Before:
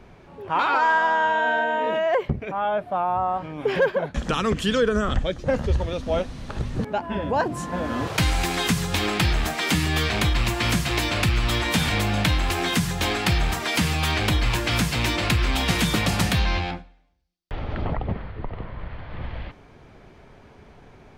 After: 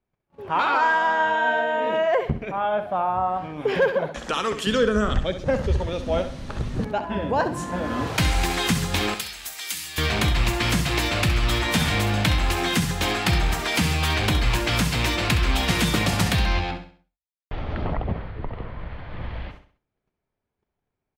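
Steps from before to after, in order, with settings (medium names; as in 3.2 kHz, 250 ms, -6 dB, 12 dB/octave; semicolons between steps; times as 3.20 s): 9.14–9.98 s: pre-emphasis filter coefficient 0.97; gate -42 dBFS, range -35 dB; 4.08–4.67 s: tone controls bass -15 dB, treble +1 dB; feedback delay 66 ms, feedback 38%, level -10.5 dB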